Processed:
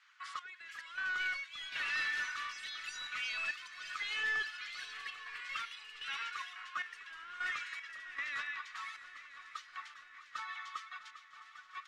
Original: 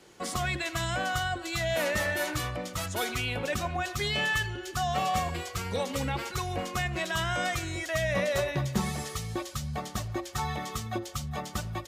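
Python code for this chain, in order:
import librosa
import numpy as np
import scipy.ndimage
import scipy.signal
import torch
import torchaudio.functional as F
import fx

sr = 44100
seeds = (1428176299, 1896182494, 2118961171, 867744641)

y = fx.spec_quant(x, sr, step_db=15)
y = scipy.signal.sosfilt(scipy.signal.butter(8, 1200.0, 'highpass', fs=sr, output='sos'), y)
y = fx.high_shelf(y, sr, hz=3500.0, db=-9.5)
y = 10.0 ** (-31.5 / 20.0) * np.tanh(y / 10.0 ** (-31.5 / 20.0))
y = fx.step_gate(y, sr, bpm=77, pattern='xx...xx..xx', floor_db=-12.0, edge_ms=4.5)
y = fx.echo_heads(y, sr, ms=326, heads='second and third', feedback_pct=65, wet_db=-16.5)
y = fx.echo_pitch(y, sr, ms=550, semitones=7, count=3, db_per_echo=-3.0)
y = fx.spacing_loss(y, sr, db_at_10k=23)
y = fx.band_widen(y, sr, depth_pct=40, at=(5.01, 7.28))
y = y * 10.0 ** (5.0 / 20.0)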